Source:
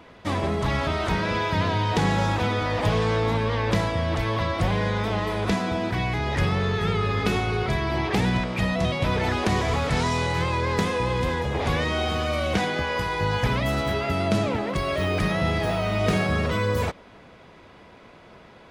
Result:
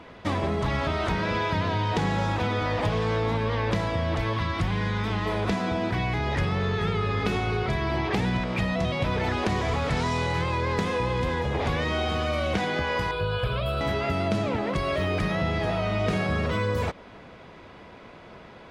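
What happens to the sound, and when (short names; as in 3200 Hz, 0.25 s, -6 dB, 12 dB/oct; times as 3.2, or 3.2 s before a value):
4.33–5.26 bell 580 Hz -11 dB
13.11–13.81 fixed phaser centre 1300 Hz, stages 8
15.35–16.09 Bessel low-pass 9300 Hz
whole clip: high shelf 8400 Hz -9.5 dB; compressor 2.5:1, threshold -27 dBFS; gain +2.5 dB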